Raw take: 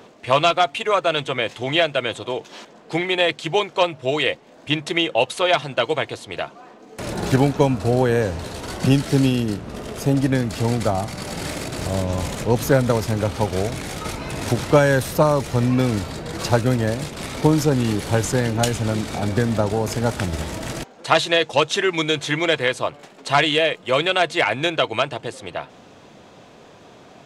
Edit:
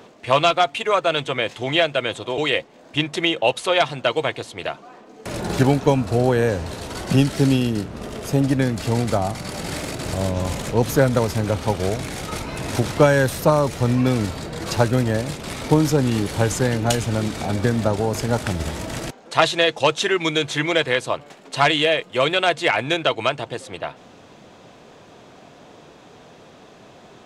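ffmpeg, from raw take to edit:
ffmpeg -i in.wav -filter_complex "[0:a]asplit=2[link_01][link_02];[link_01]atrim=end=2.382[link_03];[link_02]atrim=start=4.108[link_04];[link_03][link_04]acrossfade=duration=0.004:curve1=hsin:curve2=hsin" out.wav

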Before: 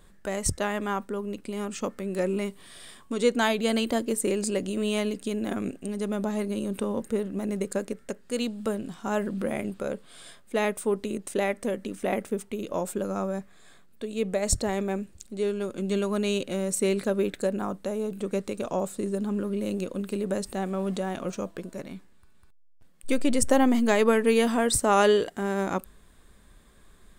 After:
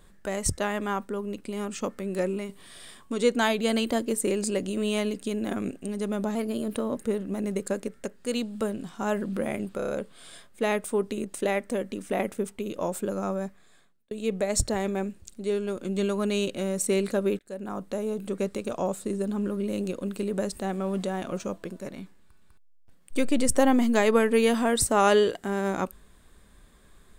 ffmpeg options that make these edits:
ffmpeg -i in.wav -filter_complex "[0:a]asplit=10[link_01][link_02][link_03][link_04][link_05][link_06][link_07][link_08][link_09][link_10];[link_01]atrim=end=2.49,asetpts=PTS-STARTPTS,afade=type=out:start_time=2.21:duration=0.28:silence=0.473151[link_11];[link_02]atrim=start=2.49:end=6.354,asetpts=PTS-STARTPTS,afade=type=in:duration=0.004:curve=hsin:silence=0.473151[link_12];[link_03]atrim=start=6.35:end=7.02,asetpts=PTS-STARTPTS,asetrate=47628,aresample=44100,atrim=end_sample=27358,asetpts=PTS-STARTPTS[link_13];[link_04]atrim=start=7.016:end=9.852[link_14];[link_05]atrim=start=9.818:end=9.852[link_15];[link_06]atrim=start=9.818:end=9.852[link_16];[link_07]atrim=start=9.818:end=9.852[link_17];[link_08]atrim=start=9.818:end=14.04,asetpts=PTS-STARTPTS,afade=type=out:start_time=3.522:duration=0.7[link_18];[link_09]atrim=start=14.04:end=17.32,asetpts=PTS-STARTPTS,afade=type=in:duration=0.004:curve=hsin,afade=type=out:start_time=3.276:duration=0.004:curve=hsin[link_19];[link_10]atrim=start=17.32,asetpts=PTS-STARTPTS,afade=type=in:duration=0.5[link_20];[link_11][link_12]concat=n=2:v=0:a=1[link_21];[link_21][link_13]acrossfade=duration=0.004:curve1=hsin:curve2=hsin[link_22];[link_22][link_14]acrossfade=duration=0.004:curve1=hsin:curve2=hsin[link_23];[link_23][link_15]acrossfade=duration=0.004:curve1=hsin:curve2=hsin[link_24];[link_24][link_16]acrossfade=duration=0.004:curve1=hsin:curve2=hsin[link_25];[link_25][link_17]acrossfade=duration=0.004:curve1=hsin:curve2=hsin[link_26];[link_18][link_19][link_20]concat=n=3:v=0:a=1[link_27];[link_26][link_27]acrossfade=duration=0.004:curve1=hsin:curve2=hsin" out.wav

